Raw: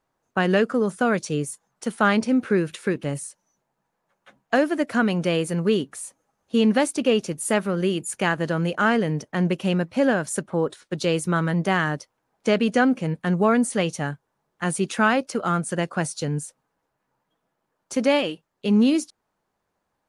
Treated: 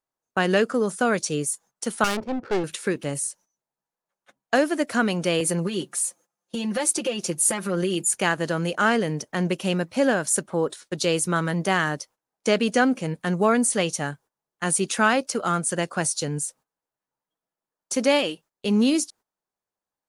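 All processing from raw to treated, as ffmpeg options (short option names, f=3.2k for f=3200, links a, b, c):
-filter_complex "[0:a]asettb=1/sr,asplit=3[a][b][c];[a]atrim=end=2.044[d];[b]atrim=start=2.04:end=2.64,asetpts=PTS-STARTPTS,afade=t=in:d=0.004:c=qsin,afade=t=out:st=0.596:d=0.004:c=qsin,aecho=1:1:2.2:0.36,atrim=end_sample=26460,aeval=exprs='clip(val(0),-1,0.0376)':c=same,adynamicsmooth=sensitivity=2:basefreq=540[e];[c]atrim=start=2.636[f];[d][e]acrossfade=d=0.004:c1=hsin:c2=qsin[g];[g][f]acrossfade=d=0.004:c1=qsin:c2=hsin,asettb=1/sr,asplit=3[h][i][j];[h]atrim=end=5.404[k];[i]atrim=start=5.4:end=8.09,asetpts=PTS-STARTPTS,afade=t=in:d=0.004:c=qsin,afade=t=out:st=2.686:d=0.004:c=qsin,highpass=130,acompressor=threshold=-23dB:ratio=6:attack=3.2:release=140:knee=1:detection=peak,aecho=1:1:5.7:0.82,atrim=end_sample=118629[l];[j]atrim=start=8.086[m];[k][l]acrossfade=d=0.004:c1=hsin:c2=qsin[n];[n][m]acrossfade=d=0.004:c1=qsin:c2=hsin,bass=f=250:g=-4,treble=f=4k:g=8,agate=range=-15dB:threshold=-48dB:ratio=16:detection=peak"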